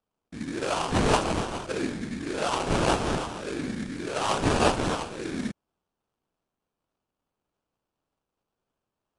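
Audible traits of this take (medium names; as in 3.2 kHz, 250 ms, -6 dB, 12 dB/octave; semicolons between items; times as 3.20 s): phasing stages 4, 1.7 Hz, lowest notch 700–4100 Hz; aliases and images of a low sample rate 2 kHz, jitter 20%; AAC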